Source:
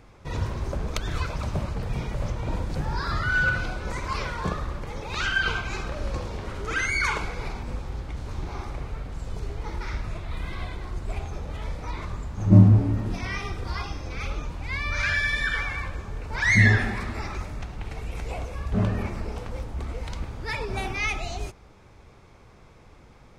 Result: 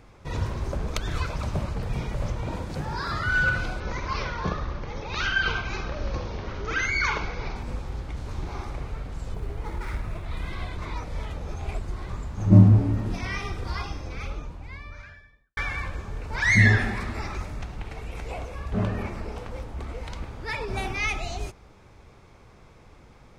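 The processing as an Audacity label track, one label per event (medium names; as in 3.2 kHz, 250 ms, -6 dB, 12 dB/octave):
2.470000	3.270000	high-pass 95 Hz 6 dB/octave
3.800000	7.560000	steep low-pass 6.4 kHz 72 dB/octave
9.340000	10.260000	median filter over 9 samples
10.780000	12.090000	reverse
13.690000	15.570000	studio fade out
17.820000	20.680000	tone controls bass -3 dB, treble -3 dB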